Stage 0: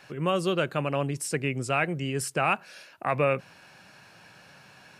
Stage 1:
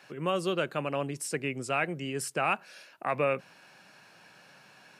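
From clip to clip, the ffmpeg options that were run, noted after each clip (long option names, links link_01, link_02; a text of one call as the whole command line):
ffmpeg -i in.wav -af "highpass=170,volume=-3dB" out.wav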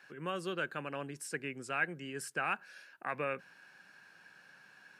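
ffmpeg -i in.wav -af "equalizer=frequency=125:width_type=o:width=0.33:gain=-4,equalizer=frequency=630:width_type=o:width=0.33:gain=-5,equalizer=frequency=1600:width_type=o:width=0.33:gain=11,volume=-8dB" out.wav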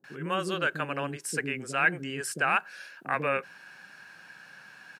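ffmpeg -i in.wav -filter_complex "[0:a]acrossover=split=390[link_01][link_02];[link_02]adelay=40[link_03];[link_01][link_03]amix=inputs=2:normalize=0,volume=9dB" out.wav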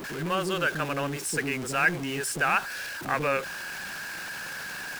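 ffmpeg -i in.wav -af "aeval=exprs='val(0)+0.5*0.0237*sgn(val(0))':channel_layout=same" out.wav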